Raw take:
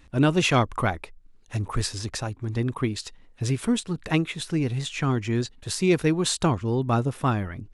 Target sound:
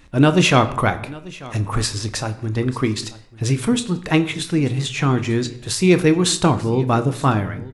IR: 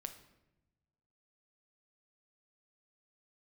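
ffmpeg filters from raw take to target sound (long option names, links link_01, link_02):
-filter_complex "[0:a]asplit=2[link_01][link_02];[link_02]adelay=28,volume=-13.5dB[link_03];[link_01][link_03]amix=inputs=2:normalize=0,aecho=1:1:890:0.0944,asplit=2[link_04][link_05];[1:a]atrim=start_sample=2205,afade=type=out:start_time=0.31:duration=0.01,atrim=end_sample=14112,lowshelf=frequency=85:gain=-7[link_06];[link_05][link_06]afir=irnorm=-1:irlink=0,volume=8dB[link_07];[link_04][link_07]amix=inputs=2:normalize=0,volume=-2dB"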